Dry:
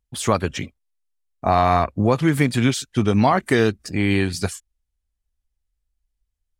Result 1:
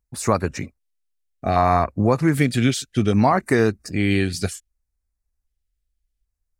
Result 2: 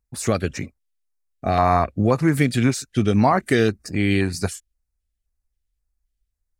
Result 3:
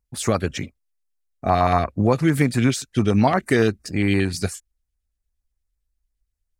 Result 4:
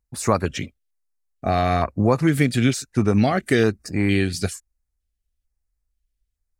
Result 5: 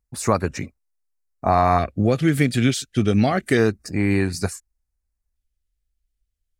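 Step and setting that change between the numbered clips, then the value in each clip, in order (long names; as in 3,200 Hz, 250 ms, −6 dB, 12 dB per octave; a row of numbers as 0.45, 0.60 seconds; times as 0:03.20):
auto-filter notch, speed: 0.64, 1.9, 8.7, 1.1, 0.28 Hertz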